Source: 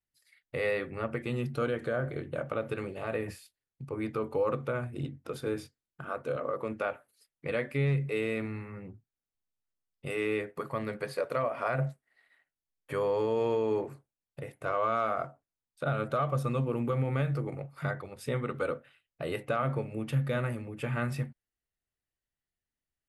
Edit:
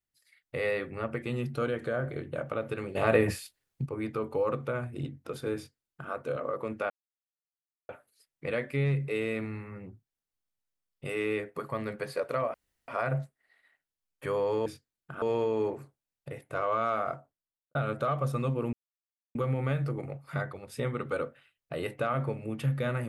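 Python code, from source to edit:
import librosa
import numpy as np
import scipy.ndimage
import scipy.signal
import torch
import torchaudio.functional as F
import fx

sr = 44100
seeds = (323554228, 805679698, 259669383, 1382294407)

y = fx.studio_fade_out(x, sr, start_s=15.24, length_s=0.62)
y = fx.edit(y, sr, fx.clip_gain(start_s=2.95, length_s=0.91, db=10.0),
    fx.duplicate(start_s=5.56, length_s=0.56, to_s=13.33),
    fx.insert_silence(at_s=6.9, length_s=0.99),
    fx.insert_room_tone(at_s=11.55, length_s=0.34),
    fx.insert_silence(at_s=16.84, length_s=0.62), tone=tone)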